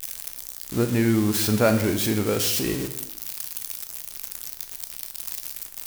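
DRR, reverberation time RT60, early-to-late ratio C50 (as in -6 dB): 6.5 dB, 0.75 s, 10.5 dB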